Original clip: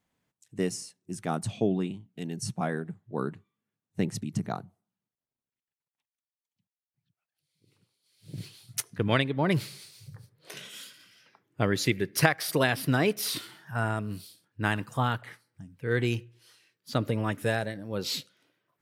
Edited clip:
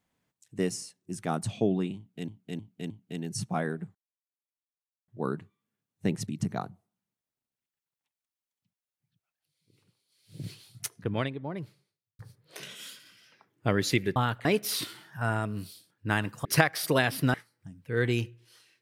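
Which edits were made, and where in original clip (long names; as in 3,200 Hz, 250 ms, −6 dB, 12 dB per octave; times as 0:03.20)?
0:01.97–0:02.28: repeat, 4 plays
0:03.02: splice in silence 1.13 s
0:08.34–0:10.13: fade out and dull
0:12.10–0:12.99: swap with 0:14.99–0:15.28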